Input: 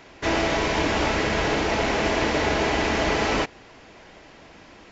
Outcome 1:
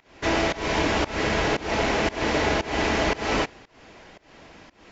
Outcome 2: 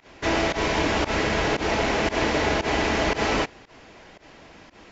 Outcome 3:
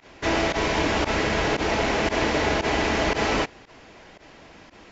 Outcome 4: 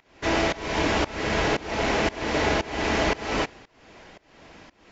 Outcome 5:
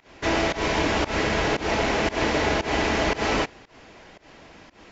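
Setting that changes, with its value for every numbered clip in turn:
pump, release: 261, 101, 66, 423, 154 ms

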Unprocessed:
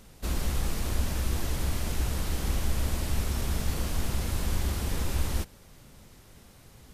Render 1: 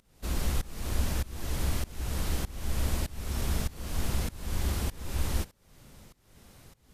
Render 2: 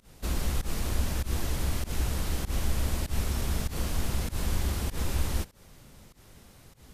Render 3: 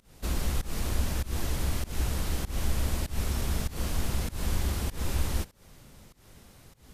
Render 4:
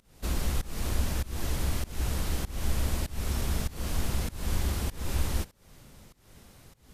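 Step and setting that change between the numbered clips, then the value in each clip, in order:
pump, release: 0.518, 0.12, 0.197, 0.302 s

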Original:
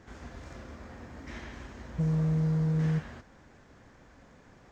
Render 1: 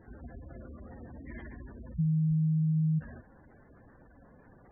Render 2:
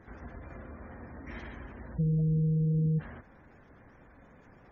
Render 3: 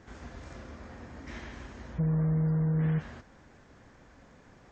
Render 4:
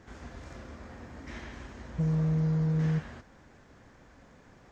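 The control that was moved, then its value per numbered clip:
spectral gate, under each frame's peak: -15, -25, -45, -60 dB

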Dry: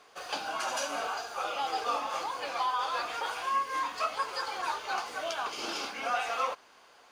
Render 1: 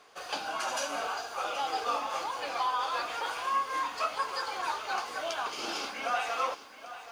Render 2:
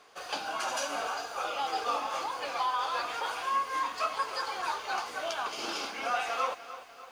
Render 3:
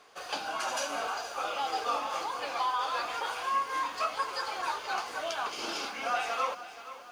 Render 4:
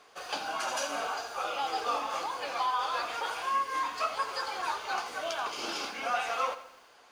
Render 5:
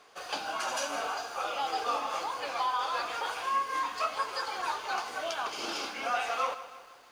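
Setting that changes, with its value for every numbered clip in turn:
lo-fi delay, time: 777, 297, 475, 84, 159 ms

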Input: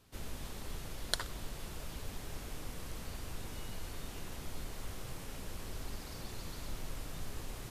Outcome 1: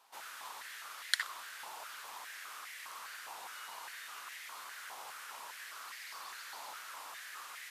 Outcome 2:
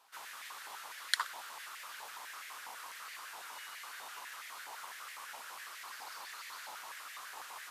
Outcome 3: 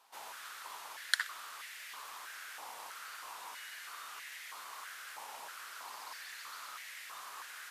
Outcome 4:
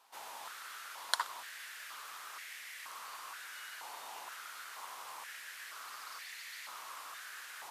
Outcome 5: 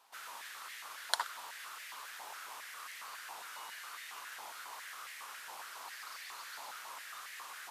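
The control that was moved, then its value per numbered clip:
stepped high-pass, rate: 4.9, 12, 3.1, 2.1, 7.3 Hz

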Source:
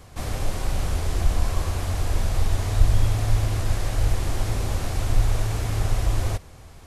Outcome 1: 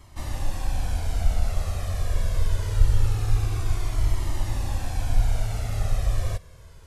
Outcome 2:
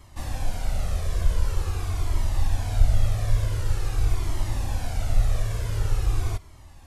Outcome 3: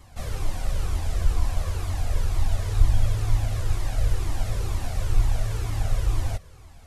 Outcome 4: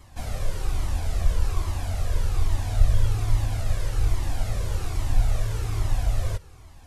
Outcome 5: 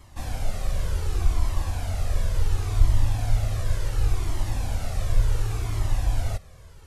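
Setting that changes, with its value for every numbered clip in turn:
cascading flanger, rate: 0.24, 0.46, 2.1, 1.2, 0.69 Hz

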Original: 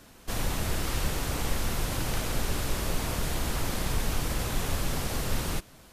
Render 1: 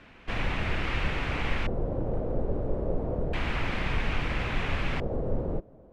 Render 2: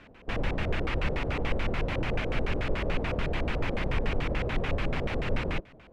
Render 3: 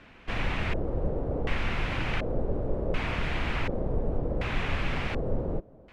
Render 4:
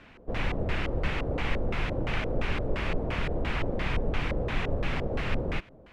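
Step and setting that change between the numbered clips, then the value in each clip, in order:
LFO low-pass, rate: 0.3, 6.9, 0.68, 2.9 Hz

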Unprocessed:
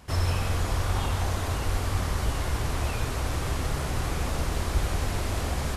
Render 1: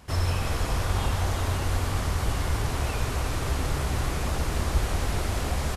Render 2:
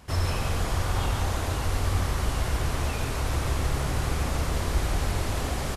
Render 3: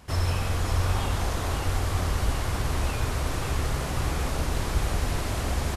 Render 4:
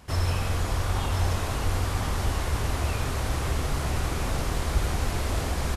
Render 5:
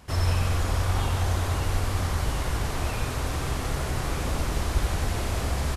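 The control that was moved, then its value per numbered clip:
feedback echo, time: 343, 141, 551, 1031, 89 ms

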